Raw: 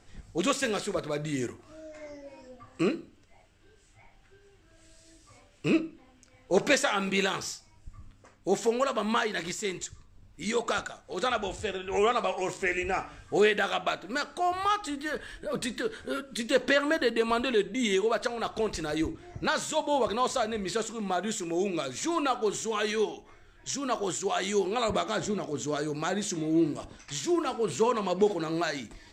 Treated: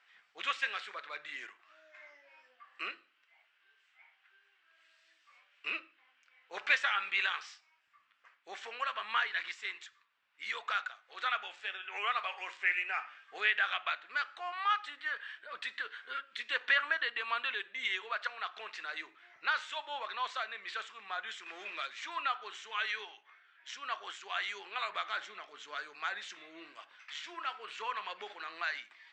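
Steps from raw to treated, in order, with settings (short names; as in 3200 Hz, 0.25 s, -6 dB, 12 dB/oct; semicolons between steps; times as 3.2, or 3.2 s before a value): 21.46–21.87 zero-crossing step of -36 dBFS; Butterworth band-pass 2000 Hz, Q 1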